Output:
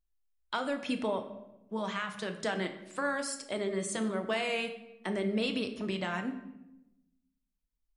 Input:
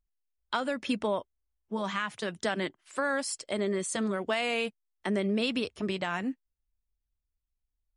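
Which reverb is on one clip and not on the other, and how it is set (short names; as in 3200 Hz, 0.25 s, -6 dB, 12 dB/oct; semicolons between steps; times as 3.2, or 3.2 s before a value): shoebox room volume 340 m³, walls mixed, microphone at 0.58 m; gain -3.5 dB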